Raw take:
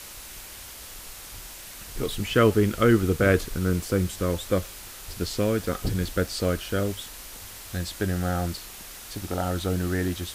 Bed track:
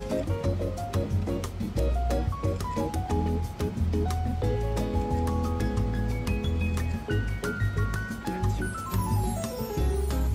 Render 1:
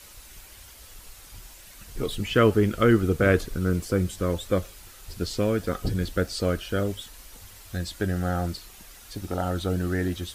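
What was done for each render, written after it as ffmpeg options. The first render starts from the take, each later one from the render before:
-af "afftdn=nr=8:nf=-42"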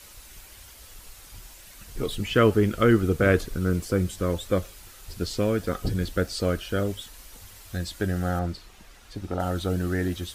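-filter_complex "[0:a]asettb=1/sr,asplit=3[s0][s1][s2];[s0]atrim=end=8.394[s3];[s1]atrim=start=8.39:end=9.4,asetpts=PTS-STARTPTS,afade=t=in:d=0.004:c=qsin,afade=t=out:st=1.006:d=0.004:c=qsin,aemphasis=mode=reproduction:type=50kf[s4];[s2]atrim=start=9.396[s5];[s3][s4]acrossfade=d=0.004:c1=hsin:c2=qsin[s6];[s6][s5]acrossfade=d=0.004:c1=qsin:c2=hsin"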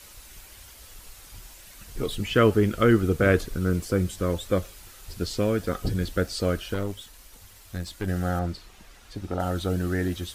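-filter_complex "[0:a]asettb=1/sr,asplit=3[s0][s1][s2];[s0]atrim=end=6.744[s3];[s1]atrim=start=6.74:end=8.08,asetpts=PTS-STARTPTS,afade=t=in:d=0.004:c=qsin,afade=t=out:st=1.336:d=0.004:c=qsin,aeval=exprs='(tanh(12.6*val(0)+0.65)-tanh(0.65))/12.6':c=same[s4];[s2]atrim=start=8.076[s5];[s3][s4]acrossfade=d=0.004:c1=hsin:c2=qsin[s6];[s6][s5]acrossfade=d=0.004:c1=qsin:c2=hsin"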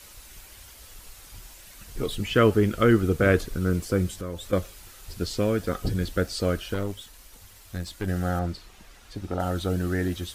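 -filter_complex "[0:a]asettb=1/sr,asplit=3[s0][s1][s2];[s0]atrim=end=4.134[s3];[s1]atrim=start=4.13:end=4.53,asetpts=PTS-STARTPTS,afade=t=in:d=0.004:c=qsin,afade=t=out:st=0.396:d=0.004:c=qsin,acompressor=threshold=0.0178:ratio=2:attack=3.2:release=140:knee=1:detection=peak[s4];[s2]atrim=start=4.526[s5];[s3][s4]acrossfade=d=0.004:c1=hsin:c2=qsin[s6];[s6][s5]acrossfade=d=0.004:c1=qsin:c2=hsin"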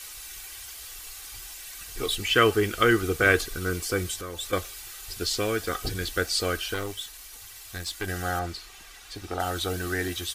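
-af "tiltshelf=f=750:g=-7,aecho=1:1:2.6:0.43"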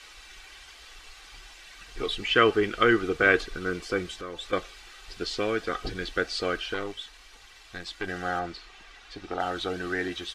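-af "lowpass=3700,equalizer=f=89:w=2:g=-12.5"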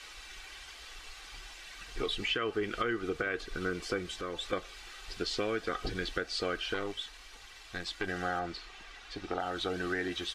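-af "alimiter=limit=0.158:level=0:latency=1:release=354,acompressor=threshold=0.0282:ratio=2.5"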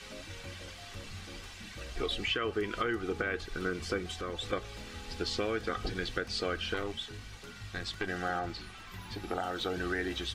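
-filter_complex "[1:a]volume=0.106[s0];[0:a][s0]amix=inputs=2:normalize=0"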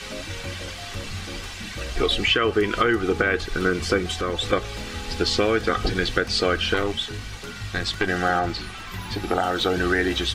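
-af "volume=3.98"

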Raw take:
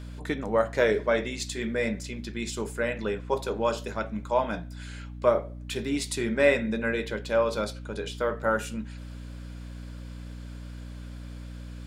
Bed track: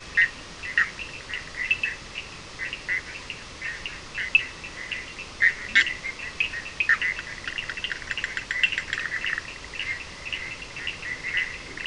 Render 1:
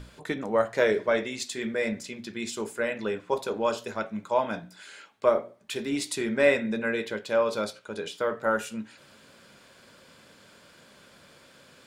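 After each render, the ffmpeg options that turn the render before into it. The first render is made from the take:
-af "bandreject=f=60:t=h:w=6,bandreject=f=120:t=h:w=6,bandreject=f=180:t=h:w=6,bandreject=f=240:t=h:w=6,bandreject=f=300:t=h:w=6"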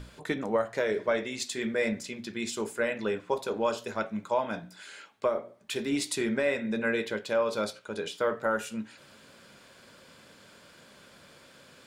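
-af "alimiter=limit=0.15:level=0:latency=1:release=312"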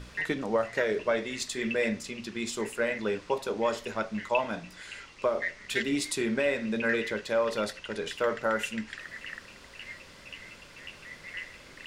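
-filter_complex "[1:a]volume=0.211[s0];[0:a][s0]amix=inputs=2:normalize=0"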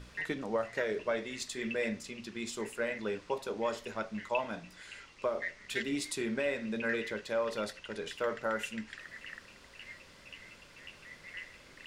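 -af "volume=0.531"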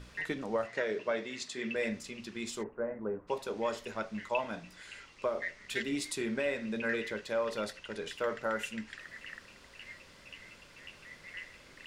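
-filter_complex "[0:a]asettb=1/sr,asplit=3[s0][s1][s2];[s0]atrim=end=0.674[s3];[s1]atrim=start=0.67:end=1.76,asetpts=PTS-STARTPTS,afade=t=in:d=0.004:c=qsin,afade=t=out:st=1.086:d=0.004:c=qsin,highpass=130,lowpass=7200[s4];[s2]atrim=start=1.756[s5];[s3][s4]acrossfade=d=0.004:c1=hsin:c2=qsin[s6];[s6][s5]acrossfade=d=0.004:c1=qsin:c2=hsin,asplit=3[s7][s8][s9];[s7]afade=t=out:st=2.62:d=0.02[s10];[s8]lowpass=f=1200:w=0.5412,lowpass=f=1200:w=1.3066,afade=t=in:st=2.62:d=0.02,afade=t=out:st=3.27:d=0.02[s11];[s9]afade=t=in:st=3.27:d=0.02[s12];[s10][s11][s12]amix=inputs=3:normalize=0"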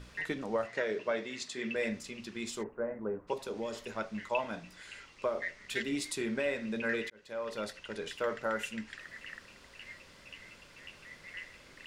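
-filter_complex "[0:a]asettb=1/sr,asplit=3[s0][s1][s2];[s0]atrim=end=3.334[s3];[s1]atrim=start=3.33:end=3.94,asetpts=PTS-STARTPTS,afade=t=in:d=0.004:c=qsin,afade=t=out:st=0.606:d=0.004:c=qsin,acrossover=split=500|3000[s4][s5][s6];[s5]acompressor=threshold=0.00708:ratio=6:attack=3.2:release=140:knee=2.83:detection=peak[s7];[s4][s7][s6]amix=inputs=3:normalize=0[s8];[s2]atrim=start=3.936[s9];[s3][s8]acrossfade=d=0.004:c1=hsin:c2=qsin[s10];[s10][s9]acrossfade=d=0.004:c1=qsin:c2=hsin,asplit=2[s11][s12];[s11]atrim=end=7.1,asetpts=PTS-STARTPTS,afade=t=out:st=7.096:d=0.004:c=hsin[s13];[s12]atrim=start=7.1,asetpts=PTS-STARTPTS,afade=t=in:d=0.87:c=qsin[s14];[s13][s14]concat=n=2:v=0:a=1"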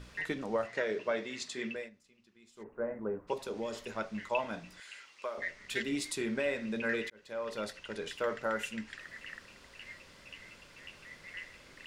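-filter_complex "[0:a]asettb=1/sr,asplit=3[s0][s1][s2];[s0]atrim=end=4.804[s3];[s1]atrim=start=4.8:end=5.38,asetpts=PTS-STARTPTS,afade=t=in:d=0.004:c=qsin,afade=t=out:st=0.576:d=0.004:c=qsin,highpass=f=1100:p=1[s4];[s2]atrim=start=5.376[s5];[s3][s4]acrossfade=d=0.004:c1=hsin:c2=qsin[s6];[s6][s5]acrossfade=d=0.004:c1=qsin:c2=hsin,asplit=3[s7][s8][s9];[s7]atrim=end=1.9,asetpts=PTS-STARTPTS,afade=t=out:st=1.62:d=0.28:silence=0.0749894[s10];[s8]atrim=start=1.9:end=2.55,asetpts=PTS-STARTPTS,volume=0.075[s11];[s9]atrim=start=2.55,asetpts=PTS-STARTPTS,afade=t=in:d=0.28:silence=0.0749894[s12];[s10][s11][s12]concat=n=3:v=0:a=1"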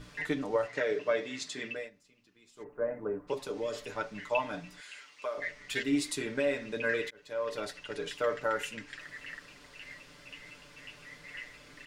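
-af "equalizer=f=270:w=5.5:g=3,aecho=1:1:6.8:0.72"

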